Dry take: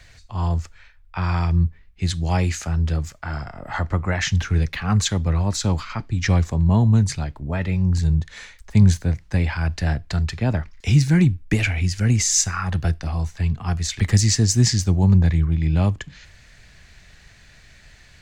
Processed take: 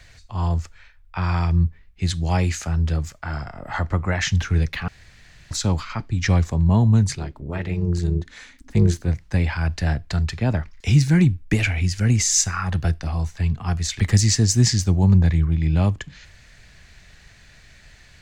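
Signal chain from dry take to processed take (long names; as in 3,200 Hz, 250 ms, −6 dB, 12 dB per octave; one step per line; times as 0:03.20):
0:04.88–0:05.51: fill with room tone
0:07.15–0:09.08: amplitude modulation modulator 260 Hz, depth 55%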